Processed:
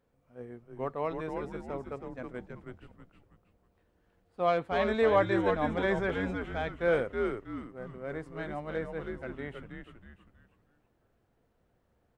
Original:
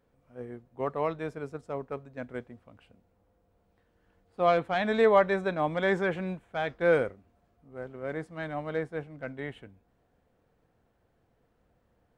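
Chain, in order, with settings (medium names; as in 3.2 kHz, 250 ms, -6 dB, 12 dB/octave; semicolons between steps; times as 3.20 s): frequency-shifting echo 321 ms, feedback 36%, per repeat -110 Hz, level -4.5 dB; trim -3.5 dB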